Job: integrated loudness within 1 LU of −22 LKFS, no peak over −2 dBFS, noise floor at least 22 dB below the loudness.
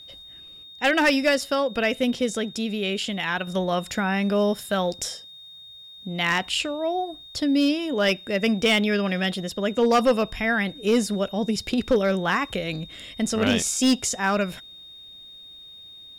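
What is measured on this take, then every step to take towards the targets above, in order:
share of clipped samples 0.5%; peaks flattened at −13.0 dBFS; interfering tone 3,700 Hz; level of the tone −42 dBFS; integrated loudness −23.5 LKFS; sample peak −13.0 dBFS; target loudness −22.0 LKFS
→ clipped peaks rebuilt −13 dBFS
notch filter 3,700 Hz, Q 30
level +1.5 dB

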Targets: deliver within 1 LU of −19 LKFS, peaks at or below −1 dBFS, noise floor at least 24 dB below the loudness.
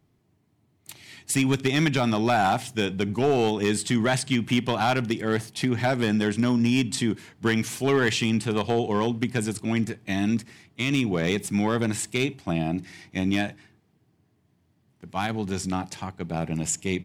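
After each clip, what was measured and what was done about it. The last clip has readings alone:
share of clipped samples 0.6%; peaks flattened at −14.5 dBFS; integrated loudness −25.5 LKFS; sample peak −14.5 dBFS; target loudness −19.0 LKFS
→ clipped peaks rebuilt −14.5 dBFS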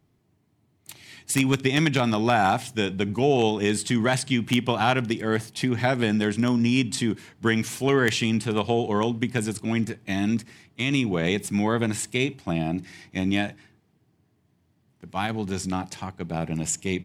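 share of clipped samples 0.0%; integrated loudness −24.5 LKFS; sample peak −5.5 dBFS; target loudness −19.0 LKFS
→ level +5.5 dB
brickwall limiter −1 dBFS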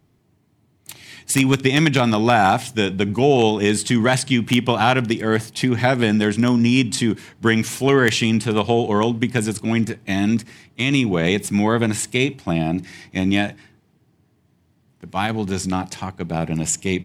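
integrated loudness −19.5 LKFS; sample peak −1.0 dBFS; background noise floor −62 dBFS

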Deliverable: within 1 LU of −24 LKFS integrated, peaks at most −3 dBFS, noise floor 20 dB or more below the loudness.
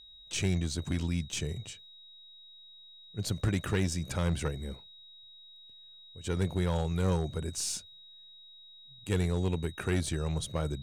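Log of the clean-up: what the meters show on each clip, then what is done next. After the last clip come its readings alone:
share of clipped samples 0.8%; peaks flattened at −22.0 dBFS; interfering tone 3,800 Hz; level of the tone −51 dBFS; integrated loudness −32.5 LKFS; sample peak −22.0 dBFS; target loudness −24.0 LKFS
→ clipped peaks rebuilt −22 dBFS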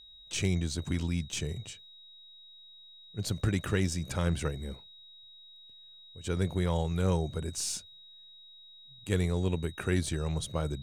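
share of clipped samples 0.0%; interfering tone 3,800 Hz; level of the tone −51 dBFS
→ notch filter 3,800 Hz, Q 30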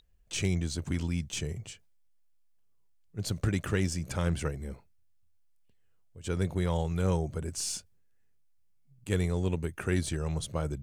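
interfering tone none found; integrated loudness −32.0 LKFS; sample peak −15.0 dBFS; target loudness −24.0 LKFS
→ level +8 dB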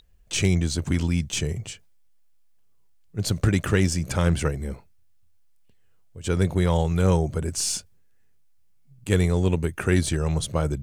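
integrated loudness −24.0 LKFS; sample peak −7.0 dBFS; background noise floor −55 dBFS

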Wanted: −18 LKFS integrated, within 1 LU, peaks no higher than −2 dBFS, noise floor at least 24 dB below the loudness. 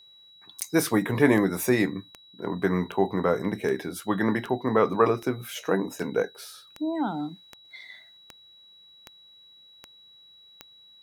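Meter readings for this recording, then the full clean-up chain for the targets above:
number of clicks 14; interfering tone 3,900 Hz; level of the tone −51 dBFS; integrated loudness −26.0 LKFS; sample peak −6.0 dBFS; target loudness −18.0 LKFS
→ click removal
notch filter 3,900 Hz, Q 30
level +8 dB
brickwall limiter −2 dBFS

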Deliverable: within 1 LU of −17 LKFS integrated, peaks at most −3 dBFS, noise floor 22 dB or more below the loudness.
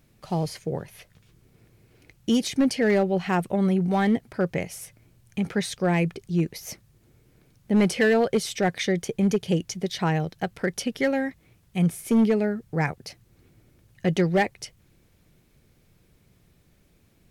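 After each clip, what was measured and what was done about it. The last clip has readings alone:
share of clipped samples 0.6%; peaks flattened at −14.5 dBFS; integrated loudness −25.0 LKFS; sample peak −14.5 dBFS; target loudness −17.0 LKFS
→ clipped peaks rebuilt −14.5 dBFS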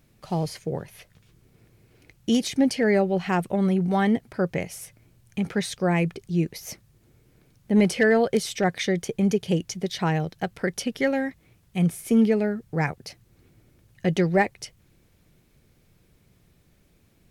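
share of clipped samples 0.0%; integrated loudness −24.5 LKFS; sample peak −8.0 dBFS; target loudness −17.0 LKFS
→ level +7.5 dB
brickwall limiter −3 dBFS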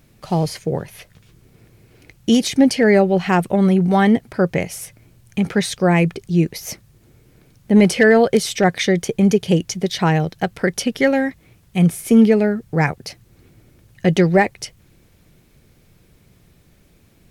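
integrated loudness −17.5 LKFS; sample peak −3.0 dBFS; background noise floor −54 dBFS

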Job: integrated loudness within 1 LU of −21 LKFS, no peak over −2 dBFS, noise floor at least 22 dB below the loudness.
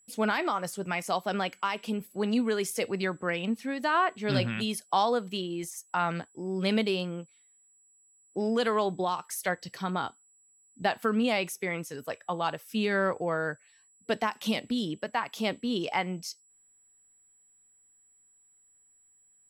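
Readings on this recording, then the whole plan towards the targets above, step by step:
interfering tone 7,800 Hz; level of the tone −61 dBFS; integrated loudness −30.5 LKFS; sample peak −13.5 dBFS; target loudness −21.0 LKFS
→ notch filter 7,800 Hz, Q 30
level +9.5 dB

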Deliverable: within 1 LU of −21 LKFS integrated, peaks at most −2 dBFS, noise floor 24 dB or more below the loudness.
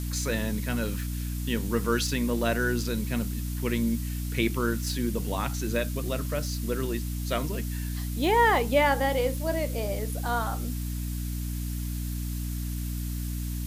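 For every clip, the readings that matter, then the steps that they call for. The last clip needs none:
mains hum 60 Hz; hum harmonics up to 300 Hz; level of the hum −29 dBFS; background noise floor −32 dBFS; target noise floor −53 dBFS; integrated loudness −28.5 LKFS; sample peak −10.0 dBFS; target loudness −21.0 LKFS
→ mains-hum notches 60/120/180/240/300 Hz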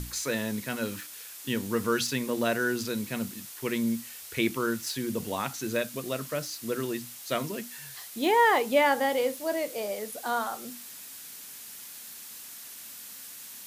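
mains hum none found; background noise floor −44 dBFS; target noise floor −54 dBFS
→ noise reduction from a noise print 10 dB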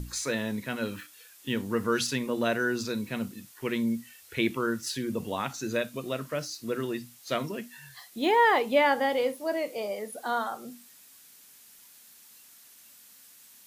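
background noise floor −54 dBFS; integrated loudness −29.5 LKFS; sample peak −11.0 dBFS; target loudness −21.0 LKFS
→ level +8.5 dB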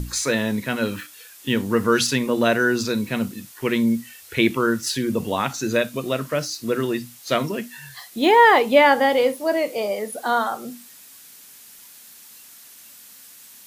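integrated loudness −21.0 LKFS; sample peak −2.5 dBFS; background noise floor −46 dBFS

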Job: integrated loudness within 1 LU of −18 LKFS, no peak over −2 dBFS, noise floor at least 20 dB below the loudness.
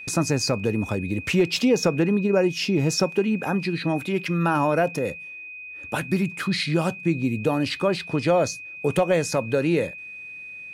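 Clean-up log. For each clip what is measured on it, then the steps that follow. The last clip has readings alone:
interfering tone 2,500 Hz; level of the tone −36 dBFS; integrated loudness −23.5 LKFS; sample peak −10.5 dBFS; target loudness −18.0 LKFS
→ notch filter 2,500 Hz, Q 30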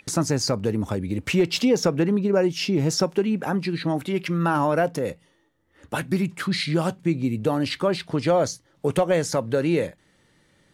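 interfering tone none found; integrated loudness −23.5 LKFS; sample peak −10.5 dBFS; target loudness −18.0 LKFS
→ level +5.5 dB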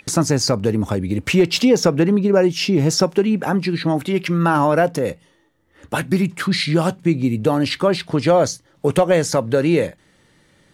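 integrated loudness −18.0 LKFS; sample peak −5.0 dBFS; background noise floor −57 dBFS

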